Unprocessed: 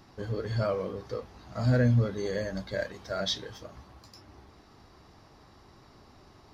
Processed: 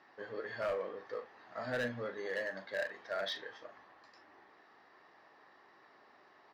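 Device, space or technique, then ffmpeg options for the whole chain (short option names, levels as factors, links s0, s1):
megaphone: -filter_complex "[0:a]highpass=480,lowpass=2900,equalizer=f=1800:t=o:w=0.23:g=11,asoftclip=type=hard:threshold=0.0447,asplit=2[s0][s1];[s1]adelay=41,volume=0.266[s2];[s0][s2]amix=inputs=2:normalize=0,volume=0.668"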